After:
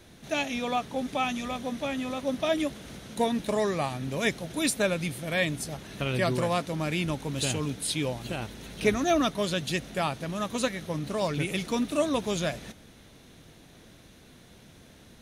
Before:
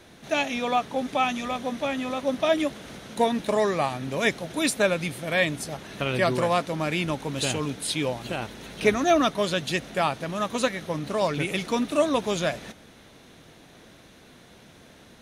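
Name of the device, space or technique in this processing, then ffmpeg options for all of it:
smiley-face EQ: -af "lowshelf=f=120:g=6.5,equalizer=f=1k:t=o:w=2.7:g=-3.5,highshelf=f=9.6k:g=4,volume=-2dB"

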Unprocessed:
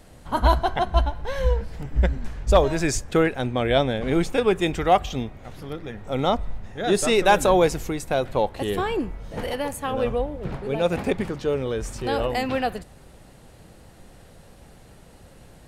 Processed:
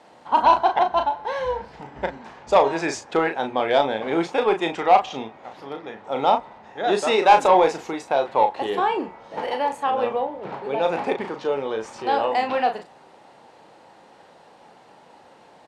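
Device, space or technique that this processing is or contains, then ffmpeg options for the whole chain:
intercom: -filter_complex "[0:a]highpass=310,lowpass=4.9k,equalizer=f=890:t=o:w=0.56:g=10.5,asoftclip=type=tanh:threshold=-6.5dB,asplit=2[a][b];[b]adelay=36,volume=-7dB[c];[a][c]amix=inputs=2:normalize=0,asettb=1/sr,asplit=3[d][e][f];[d]atrim=end=1.244[g];[e]atrim=start=1.24:end=1.81,asetpts=PTS-STARTPTS,afade=t=in:d=0.004:c=qsin,afade=t=out:st=0.566:d=0.004:c=qsin,asubboost=boost=9.5:cutoff=240[h];[f]atrim=start=1.806[i];[g][h]acrossfade=d=0.004:c1=hsin:c2=qsin[j];[j][i]acrossfade=d=0.004:c1=qsin:c2=hsin"

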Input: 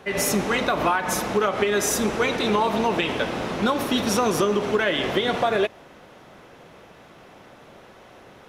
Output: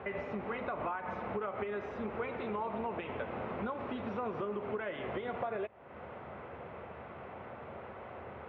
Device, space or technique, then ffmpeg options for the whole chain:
bass amplifier: -af "acompressor=threshold=-39dB:ratio=4,highpass=73,equalizer=f=80:t=q:w=4:g=9,equalizer=f=170:t=q:w=4:g=-5,equalizer=f=300:t=q:w=4:g=-8,equalizer=f=1.7k:t=q:w=4:g=-5,lowpass=f=2.2k:w=0.5412,lowpass=f=2.2k:w=1.3066,volume=2.5dB"

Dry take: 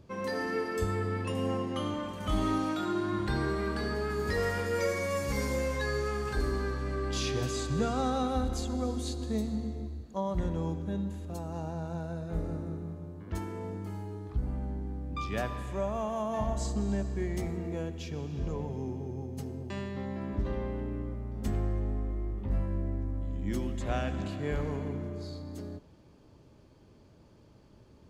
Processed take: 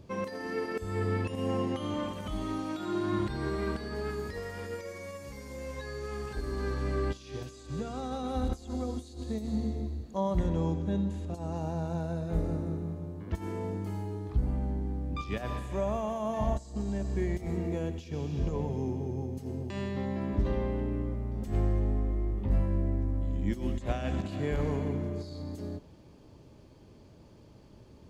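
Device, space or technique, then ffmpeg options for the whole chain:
de-esser from a sidechain: -filter_complex "[0:a]asettb=1/sr,asplit=3[a][b][c];[a]atrim=end=10.474[d];[b]atrim=start=10.47:end=11.57,asetpts=PTS-STARTPTS,afade=t=in:d=0.004:c=qsin,afade=t=out:st=1.096:d=0.004:c=qsin,lowpass=8.8k[e];[c]atrim=start=11.566[f];[d][e]acrossfade=d=0.004:c1=hsin:c2=qsin[g];[g][f]acrossfade=d=0.004:c1=qsin:c2=hsin,equalizer=f=1.4k:w=2.2:g=-3.5,asplit=2[h][i];[i]highpass=f=5.1k:w=0.5412,highpass=f=5.1k:w=1.3066,apad=whole_len=1238854[j];[h][j]sidechaincompress=threshold=-57dB:ratio=20:attack=1.1:release=90,volume=3.5dB"

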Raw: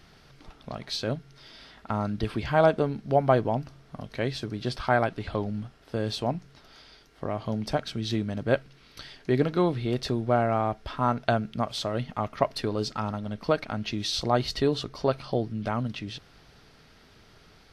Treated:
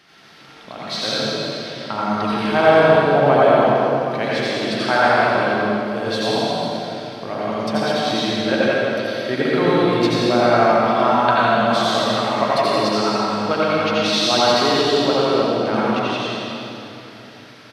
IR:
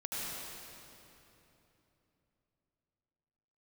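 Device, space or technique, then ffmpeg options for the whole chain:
PA in a hall: -filter_complex "[0:a]highpass=200,equalizer=f=2.4k:t=o:w=2.5:g=6,aecho=1:1:86:0.596[a];[1:a]atrim=start_sample=2205[b];[a][b]afir=irnorm=-1:irlink=0,volume=4.5dB"

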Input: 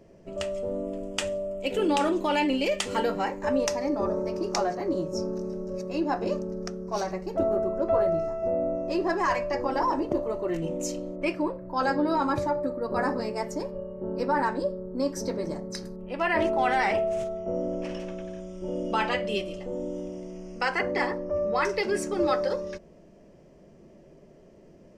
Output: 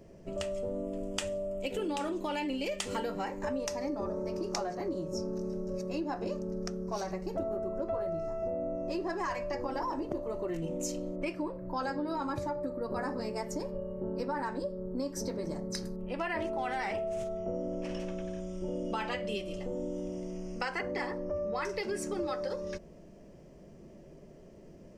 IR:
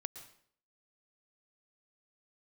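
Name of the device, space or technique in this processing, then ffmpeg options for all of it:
ASMR close-microphone chain: -af "lowshelf=f=190:g=5,acompressor=threshold=-31dB:ratio=4,highshelf=f=6.1k:g=5.5,volume=-1.5dB"

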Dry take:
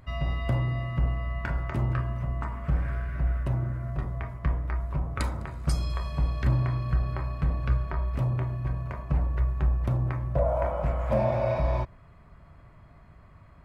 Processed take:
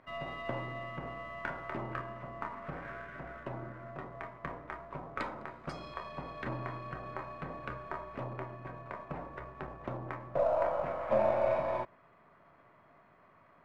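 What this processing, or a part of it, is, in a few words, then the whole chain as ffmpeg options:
crystal radio: -af "highpass=320,lowpass=2.5k,aeval=exprs='if(lt(val(0),0),0.708*val(0),val(0))':c=same"

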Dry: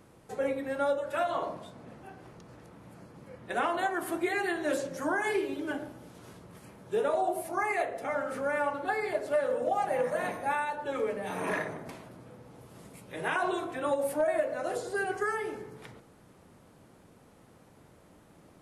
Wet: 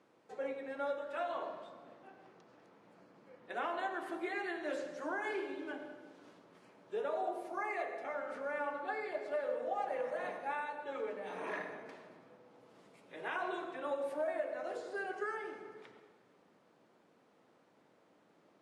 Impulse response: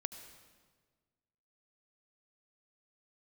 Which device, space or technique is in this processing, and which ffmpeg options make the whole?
supermarket ceiling speaker: -filter_complex "[0:a]highpass=280,lowpass=5.1k[a];[1:a]atrim=start_sample=2205[b];[a][b]afir=irnorm=-1:irlink=0,volume=-6.5dB"

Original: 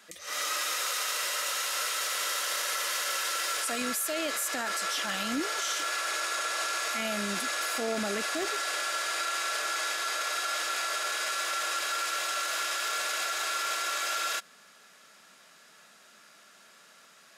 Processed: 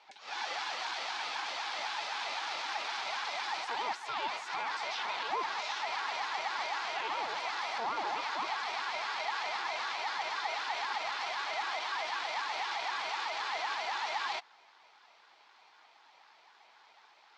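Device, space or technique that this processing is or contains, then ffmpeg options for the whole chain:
voice changer toy: -af "aeval=exprs='val(0)*sin(2*PI*490*n/s+490*0.55/3.9*sin(2*PI*3.9*n/s))':c=same,highpass=530,equalizer=f=550:t=q:w=4:g=-4,equalizer=f=830:t=q:w=4:g=8,equalizer=f=1.9k:t=q:w=4:g=-4,equalizer=f=2.9k:t=q:w=4:g=-3,lowpass=f=4.4k:w=0.5412,lowpass=f=4.4k:w=1.3066"

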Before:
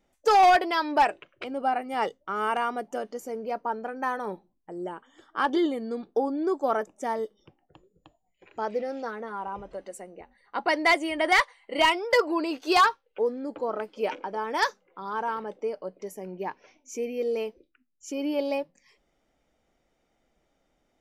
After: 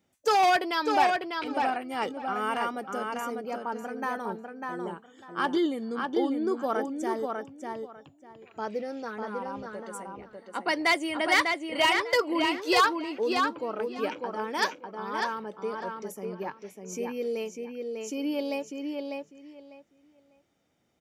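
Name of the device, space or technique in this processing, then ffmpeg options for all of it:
smiley-face EQ: -filter_complex "[0:a]highpass=f=88:w=0.5412,highpass=f=88:w=1.3066,lowshelf=f=88:g=8.5,equalizer=f=670:t=o:w=1.7:g=-5,equalizer=f=2k:t=o:w=0.26:g=-2,highshelf=f=9.5k:g=3.5,asplit=2[a][b];[b]adelay=598,lowpass=f=4.4k:p=1,volume=-4dB,asplit=2[c][d];[d]adelay=598,lowpass=f=4.4k:p=1,volume=0.2,asplit=2[e][f];[f]adelay=598,lowpass=f=4.4k:p=1,volume=0.2[g];[a][c][e][g]amix=inputs=4:normalize=0"

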